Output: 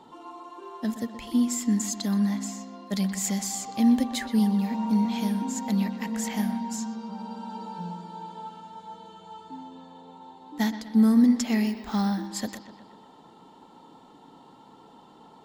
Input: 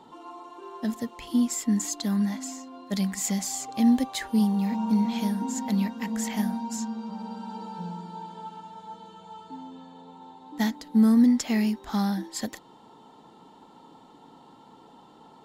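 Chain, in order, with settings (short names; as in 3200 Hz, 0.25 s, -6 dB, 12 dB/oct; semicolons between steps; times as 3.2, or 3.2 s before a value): analogue delay 0.124 s, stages 4096, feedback 57%, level -13 dB; 11.67–12.26 careless resampling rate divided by 2×, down filtered, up hold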